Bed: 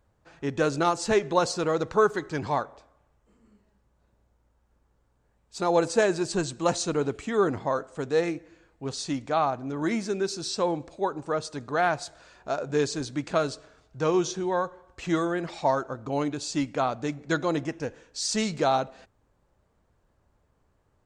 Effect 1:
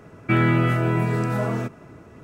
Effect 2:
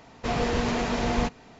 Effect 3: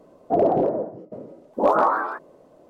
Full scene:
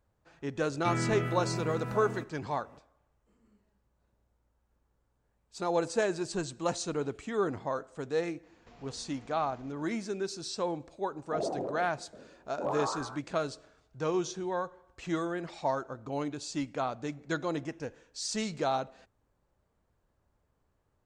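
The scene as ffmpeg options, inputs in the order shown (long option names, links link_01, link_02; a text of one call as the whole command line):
ffmpeg -i bed.wav -i cue0.wav -i cue1.wav -i cue2.wav -filter_complex "[0:a]volume=-6.5dB[link_01];[2:a]acompressor=threshold=-37dB:ratio=6:attack=3.2:release=140:knee=1:detection=peak[link_02];[1:a]atrim=end=2.23,asetpts=PTS-STARTPTS,volume=-13dB,afade=type=in:duration=0.004:curve=hsin,afade=type=out:start_time=2.226:duration=0.004:curve=hsin,adelay=560[link_03];[link_02]atrim=end=1.59,asetpts=PTS-STARTPTS,volume=-16dB,afade=type=in:duration=0.004:curve=hsin,afade=type=out:start_time=1.586:duration=0.004:curve=hsin,adelay=8430[link_04];[3:a]atrim=end=2.69,asetpts=PTS-STARTPTS,volume=-15dB,afade=type=in:duration=0.004:curve=hsin,afade=type=out:start_time=2.686:duration=0.004:curve=hsin,adelay=11010[link_05];[link_01][link_03][link_04][link_05]amix=inputs=4:normalize=0" out.wav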